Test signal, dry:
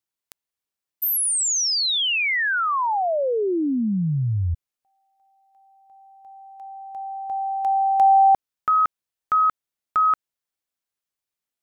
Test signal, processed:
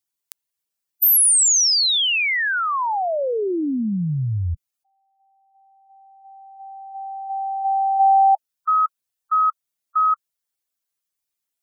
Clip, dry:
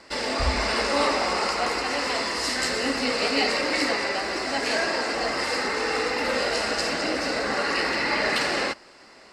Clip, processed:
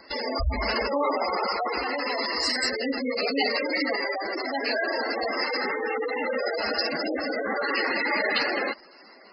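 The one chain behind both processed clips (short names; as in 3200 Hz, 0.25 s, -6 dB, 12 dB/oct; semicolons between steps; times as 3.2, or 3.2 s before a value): spectral gate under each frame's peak -10 dB strong; high shelf 4300 Hz +8.5 dB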